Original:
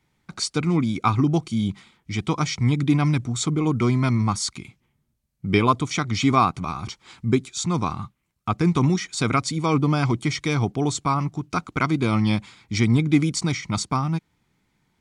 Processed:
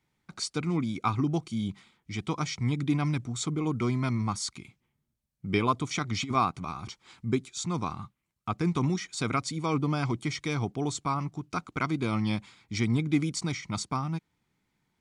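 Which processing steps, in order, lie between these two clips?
bass shelf 95 Hz -3.5 dB; 5.81–6.35 s: compressor with a negative ratio -22 dBFS, ratio -0.5; trim -7 dB

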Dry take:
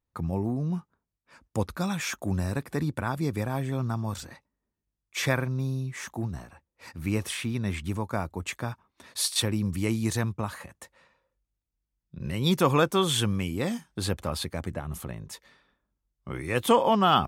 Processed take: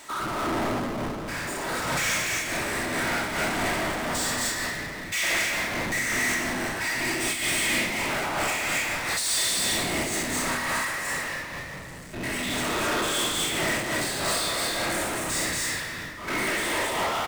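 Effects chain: spectrogram pixelated in time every 100 ms; compressor with a negative ratio -30 dBFS, ratio -1; saturation -34.5 dBFS, distortion -7 dB; cabinet simulation 460–9500 Hz, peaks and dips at 470 Hz -5 dB, 2 kHz +8 dB, 8.1 kHz +9 dB; whisper effect; loudspeakers at several distances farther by 22 m -4 dB, 80 m -4 dB, 91 m -2 dB; simulated room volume 1200 m³, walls mixed, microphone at 2.8 m; power-law waveshaper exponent 0.35; random flutter of the level, depth 65%

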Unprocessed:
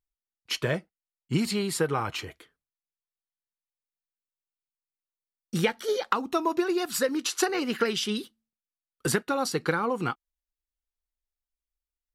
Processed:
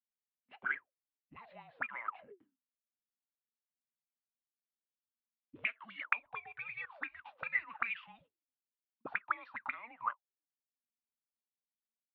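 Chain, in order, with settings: 1.37–2.05 s: tilt EQ +1.5 dB/octave; mistuned SSB -230 Hz 310–3500 Hz; auto-wah 230–2400 Hz, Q 21, up, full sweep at -23.5 dBFS; trim +9.5 dB

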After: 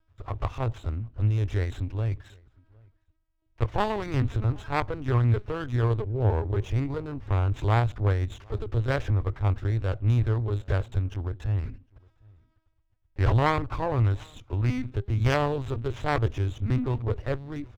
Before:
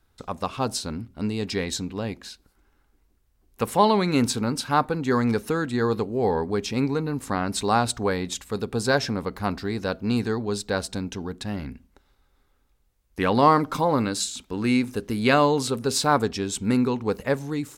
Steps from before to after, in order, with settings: self-modulated delay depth 0.22 ms; LPC vocoder at 8 kHz pitch kept; resonant low shelf 140 Hz +8.5 dB, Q 3; echo from a far wall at 130 m, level -28 dB; sliding maximum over 5 samples; trim -5 dB

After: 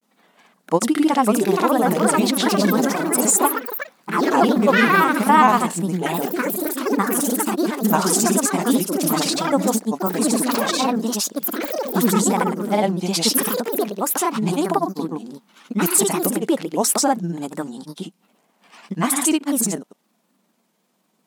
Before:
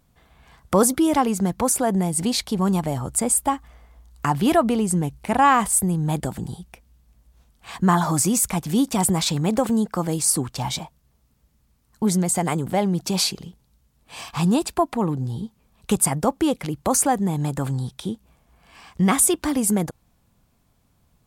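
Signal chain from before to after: granulator, pitch spread up and down by 3 st; ever faster or slower copies 698 ms, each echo +4 st, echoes 3; brick-wall FIR high-pass 170 Hz; trim +3 dB

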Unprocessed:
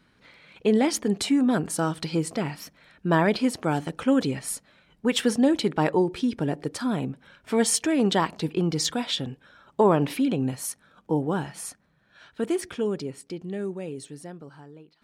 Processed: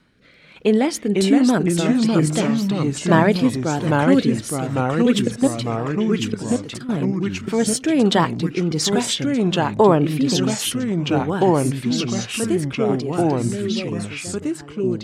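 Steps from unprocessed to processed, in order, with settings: 5.19–6.89 s: level held to a coarse grid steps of 18 dB; rotary cabinet horn 1.2 Hz; ever faster or slower copies 419 ms, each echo -2 st, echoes 3; trim +6 dB

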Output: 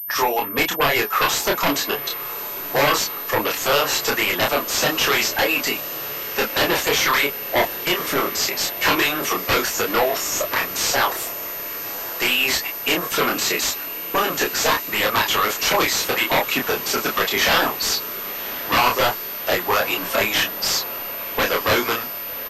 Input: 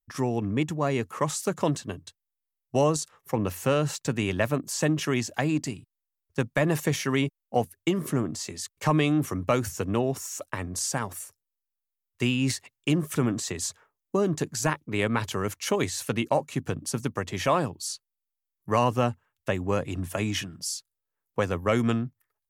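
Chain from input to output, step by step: coarse spectral quantiser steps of 15 dB; high-pass 740 Hz 12 dB/octave; harmonic-percussive split harmonic -12 dB; in parallel at +2.5 dB: peak limiter -23.5 dBFS, peak gain reduction 8.5 dB; on the sum: sine folder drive 14 dB, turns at -11 dBFS; flange 1.4 Hz, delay 3.7 ms, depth 9.7 ms, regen -42%; doubling 28 ms -2.5 dB; on a send: echo that smears into a reverb 1129 ms, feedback 70%, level -15 dB; on the sum: class-D stage that switches slowly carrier 13 kHz

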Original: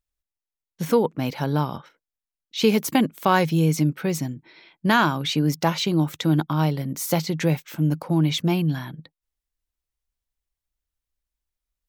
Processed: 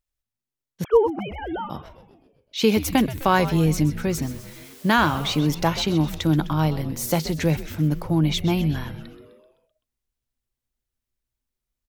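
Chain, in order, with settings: 0.84–1.70 s: formants replaced by sine waves; 4.22–5.39 s: word length cut 8-bit, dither triangular; frequency-shifting echo 128 ms, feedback 59%, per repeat -130 Hz, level -13.5 dB

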